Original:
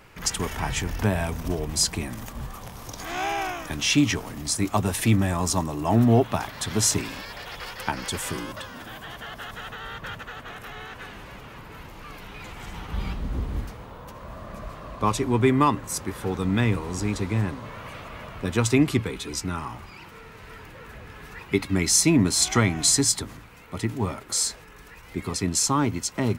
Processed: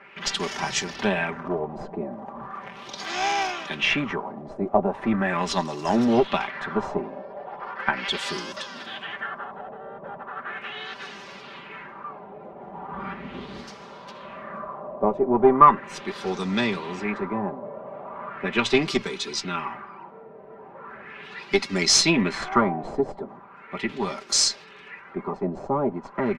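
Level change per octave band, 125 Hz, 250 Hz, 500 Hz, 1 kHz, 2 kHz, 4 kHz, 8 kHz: -10.0, -2.0, +3.5, +5.0, +3.0, +1.5, -5.5 dB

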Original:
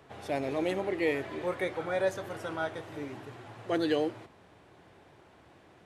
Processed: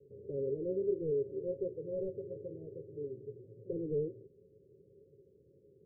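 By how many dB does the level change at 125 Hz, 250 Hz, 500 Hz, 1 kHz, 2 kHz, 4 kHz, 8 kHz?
-2.0 dB, -8.0 dB, -3.5 dB, under -40 dB, under -40 dB, under -40 dB, under -25 dB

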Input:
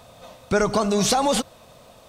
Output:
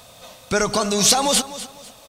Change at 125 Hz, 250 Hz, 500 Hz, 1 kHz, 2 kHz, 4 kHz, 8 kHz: -1.0, -1.5, -0.5, +0.5, +3.0, +7.5, +8.5 dB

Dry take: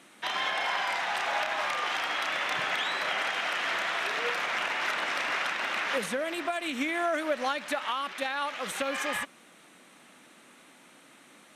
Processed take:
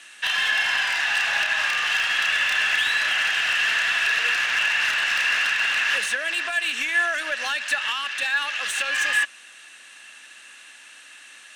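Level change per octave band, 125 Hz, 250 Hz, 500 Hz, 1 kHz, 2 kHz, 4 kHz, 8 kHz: n/a, -11.0 dB, -6.0 dB, -1.0 dB, +10.5 dB, +9.5 dB, +9.5 dB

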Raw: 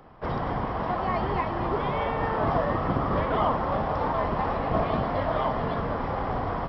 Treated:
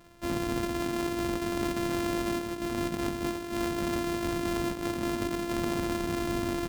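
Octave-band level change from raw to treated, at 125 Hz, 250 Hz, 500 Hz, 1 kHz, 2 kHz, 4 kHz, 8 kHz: -7.5 dB, +2.0 dB, -4.5 dB, -10.5 dB, -2.5 dB, +4.5 dB, n/a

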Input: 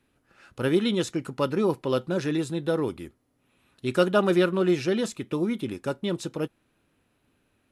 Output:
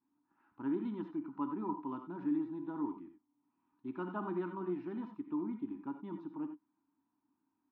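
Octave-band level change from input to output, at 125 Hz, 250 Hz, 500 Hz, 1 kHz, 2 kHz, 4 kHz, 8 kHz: -18.5 dB, -10.5 dB, -19.0 dB, -10.0 dB, -21.0 dB, under -30 dB, under -35 dB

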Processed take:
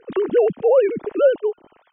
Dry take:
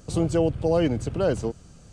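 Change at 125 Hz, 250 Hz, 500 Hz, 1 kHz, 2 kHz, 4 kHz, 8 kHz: -14.5 dB, -3.5 dB, +8.5 dB, +3.5 dB, +4.5 dB, n/a, under -40 dB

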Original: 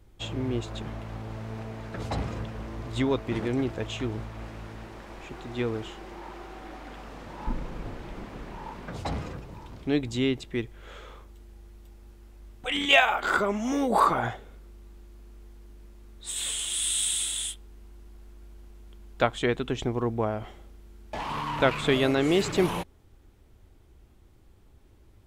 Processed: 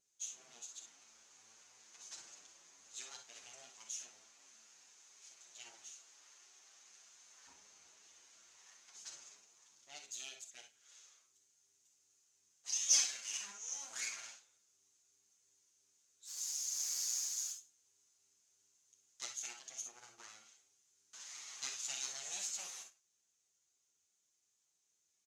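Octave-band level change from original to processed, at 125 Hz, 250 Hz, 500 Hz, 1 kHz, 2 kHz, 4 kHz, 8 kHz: under -40 dB, under -40 dB, -38.0 dB, -31.0 dB, -22.5 dB, -12.5 dB, -3.0 dB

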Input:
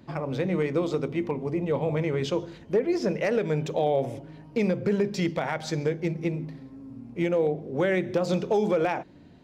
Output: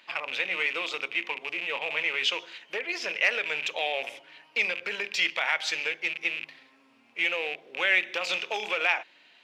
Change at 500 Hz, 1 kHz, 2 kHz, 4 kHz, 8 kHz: -11.5, -2.5, +11.0, +11.5, +3.0 dB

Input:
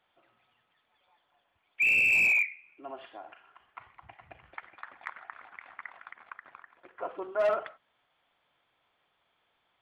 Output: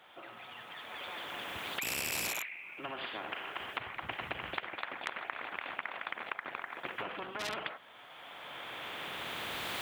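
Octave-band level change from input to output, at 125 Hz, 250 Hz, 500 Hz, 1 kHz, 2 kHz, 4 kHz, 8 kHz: n/a, +3.5 dB, -9.0 dB, +2.5 dB, -9.0 dB, +12.0 dB, +9.5 dB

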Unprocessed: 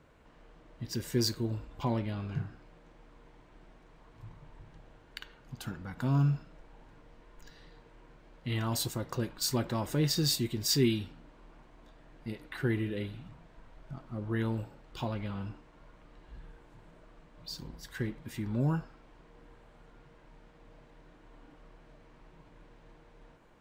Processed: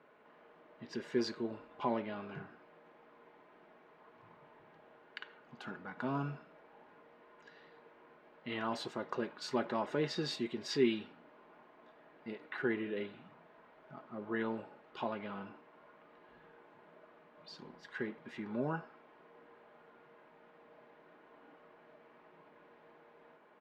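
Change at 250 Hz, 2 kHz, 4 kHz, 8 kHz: -5.0, 0.0, -9.5, -18.0 dB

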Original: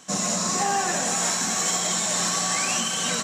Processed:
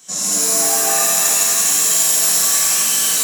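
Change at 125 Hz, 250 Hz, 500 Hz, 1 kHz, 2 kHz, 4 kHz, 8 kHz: n/a, -2.5 dB, +4.0 dB, 0.0 dB, +3.5 dB, +6.5 dB, +10.5 dB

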